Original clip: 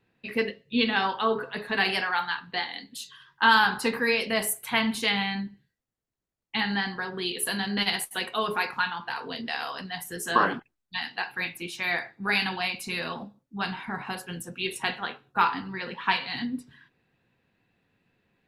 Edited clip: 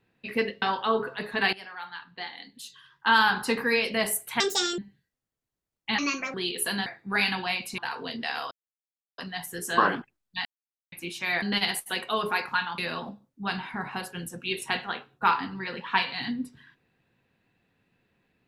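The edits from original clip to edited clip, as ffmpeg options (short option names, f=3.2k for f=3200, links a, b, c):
-filter_complex "[0:a]asplit=14[a][b][c][d][e][f][g][h][i][j][k][l][m][n];[a]atrim=end=0.622[o];[b]atrim=start=0.978:end=1.89,asetpts=PTS-STARTPTS,afade=t=out:st=0.908:d=0.004:c=hsin:silence=0.11885[p];[c]atrim=start=1.89:end=4.764,asetpts=PTS-STARTPTS,afade=t=in:d=1.96:silence=0.11885[q];[d]atrim=start=4.76:end=5.44,asetpts=PTS-STARTPTS,asetrate=78498,aresample=44100,atrim=end_sample=16847,asetpts=PTS-STARTPTS[r];[e]atrim=start=5.436:end=6.644[s];[f]atrim=start=6.64:end=7.15,asetpts=PTS-STARTPTS,asetrate=62622,aresample=44100[t];[g]atrim=start=7.146:end=7.672[u];[h]atrim=start=11.998:end=12.922[v];[i]atrim=start=9.028:end=9.76,asetpts=PTS-STARTPTS,afade=t=out:st=0.728:d=0.004:c=hsin,apad=pad_dur=0.67[w];[j]atrim=start=9.76:end=11.03,asetpts=PTS-STARTPTS,afade=t=in:d=0.004:c=hsin,afade=t=out:st=1.266:d=0.004:c=hsin[x];[k]atrim=start=11.03:end=11.5,asetpts=PTS-STARTPTS,volume=0[y];[l]atrim=start=11.5:end=12.002,asetpts=PTS-STARTPTS,afade=t=in:d=0.004:c=hsin[z];[m]atrim=start=7.668:end=9.032[aa];[n]atrim=start=12.918[ab];[p][q]concat=n=2:v=0:a=1[ac];[o][ac]acrossfade=d=0.004:c1=hsin:c2=hsin[ad];[ad][r]acrossfade=d=0.004:c1=hsin:c2=hsin[ae];[ae][s]acrossfade=d=0.004:c1=hsin:c2=hsin[af];[af][t]acrossfade=d=0.004:c1=hsin:c2=hsin[ag];[ag][u]acrossfade=d=0.004:c1=hsin:c2=hsin[ah];[ah][v]acrossfade=d=0.004:c1=hsin:c2=hsin[ai];[w][x][y][z]concat=n=4:v=0:a=1[aj];[ai][aj]acrossfade=d=0.004:c1=hsin:c2=hsin[ak];[ak][aa]acrossfade=d=0.004:c1=hsin:c2=hsin[al];[al][ab]acrossfade=d=0.004:c1=hsin:c2=hsin"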